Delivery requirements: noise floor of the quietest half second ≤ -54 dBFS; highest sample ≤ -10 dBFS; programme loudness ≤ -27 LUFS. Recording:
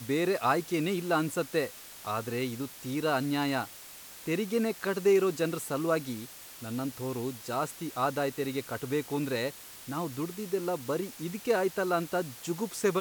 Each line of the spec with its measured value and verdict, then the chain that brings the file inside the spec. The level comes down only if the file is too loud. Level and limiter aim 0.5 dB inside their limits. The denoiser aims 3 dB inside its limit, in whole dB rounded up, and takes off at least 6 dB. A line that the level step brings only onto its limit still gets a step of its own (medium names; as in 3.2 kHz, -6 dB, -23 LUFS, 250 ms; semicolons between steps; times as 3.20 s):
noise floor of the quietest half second -48 dBFS: fail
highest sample -13.5 dBFS: pass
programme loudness -31.5 LUFS: pass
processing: noise reduction 9 dB, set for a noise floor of -48 dBFS